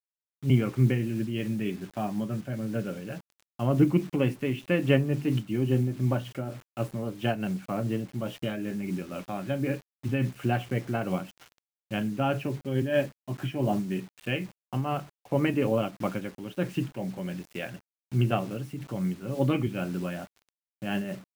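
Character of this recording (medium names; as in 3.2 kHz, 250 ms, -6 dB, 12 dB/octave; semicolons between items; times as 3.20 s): a quantiser's noise floor 8-bit, dither none; random flutter of the level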